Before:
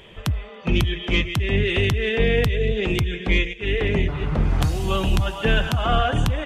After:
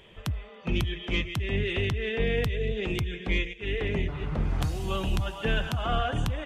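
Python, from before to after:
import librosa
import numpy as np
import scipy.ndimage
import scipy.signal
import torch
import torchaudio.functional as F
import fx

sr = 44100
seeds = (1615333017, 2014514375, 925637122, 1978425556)

y = fx.high_shelf(x, sr, hz=9700.0, db=-11.5, at=(1.73, 2.27))
y = F.gain(torch.from_numpy(y), -7.5).numpy()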